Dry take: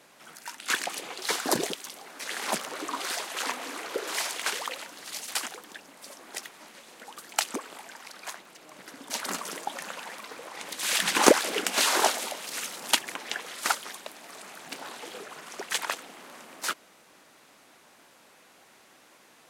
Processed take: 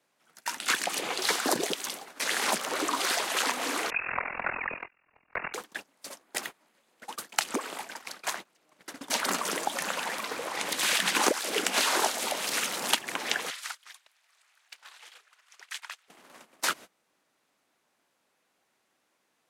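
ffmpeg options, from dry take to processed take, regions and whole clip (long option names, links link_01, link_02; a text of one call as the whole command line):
ffmpeg -i in.wav -filter_complex "[0:a]asettb=1/sr,asplit=3[link_01][link_02][link_03];[link_01]atrim=end=3.904[link_04];[link_02]atrim=start=3.9:end=5.54,asetpts=PTS-STARTPTS,afade=type=in:duration=0.004:curve=qsin,afade=type=out:start_time=1.636:duration=0.004:curve=qsin,lowpass=frequency=2600:width_type=q:width=0.5098,lowpass=frequency=2600:width_type=q:width=0.6013,lowpass=frequency=2600:width_type=q:width=0.9,lowpass=frequency=2600:width_type=q:width=2.563,afreqshift=-3000,tremolo=f=42:d=0.889[link_05];[link_03]atrim=start=5.536[link_06];[link_04][link_05]acrossfade=duration=0.004:curve1=hsin:curve2=qsin[link_07];[link_07][link_06]acrossfade=duration=0.004:curve1=qsin:curve2=hsin,asettb=1/sr,asplit=3[link_08][link_09][link_10];[link_08]atrim=end=6.234[link_11];[link_09]atrim=start=6.23:end=6.98,asetpts=PTS-STARTPTS,afade=type=in:duration=0.004:curve=qsin,afade=type=out:start_time=0.746:duration=0.004:curve=qsin,equalizer=frequency=5200:width_type=o:width=2.2:gain=-3.5,bandreject=frequency=5700:width=20[link_12];[link_10]atrim=start=6.976[link_13];[link_11][link_12]acrossfade=duration=0.004:curve1=hsin:curve2=qsin[link_14];[link_14][link_13]acrossfade=duration=0.004:curve1=qsin:curve2=hsin,asettb=1/sr,asplit=3[link_15][link_16][link_17];[link_15]atrim=end=13.504[link_18];[link_16]atrim=start=13.5:end=16.08,asetpts=PTS-STARTPTS,afade=type=in:duration=0.004:curve=qsin,afade=type=out:start_time=2.576:duration=0.004:curve=qsin,highpass=1500,highshelf=frequency=7100:gain=-7.5,acompressor=threshold=-41dB:ratio=6:attack=3.2:release=140:knee=1:detection=peak[link_19];[link_17]atrim=start=16.076[link_20];[link_18][link_19]acrossfade=duration=0.004:curve1=hsin:curve2=qsin[link_21];[link_21][link_20]acrossfade=duration=0.004:curve1=qsin:curve2=hsin,agate=range=-25dB:threshold=-44dB:ratio=16:detection=peak,acrossover=split=180|3900[link_22][link_23][link_24];[link_22]acompressor=threshold=-59dB:ratio=4[link_25];[link_23]acompressor=threshold=-34dB:ratio=4[link_26];[link_24]acompressor=threshold=-39dB:ratio=4[link_27];[link_25][link_26][link_27]amix=inputs=3:normalize=0,volume=7.5dB" out.wav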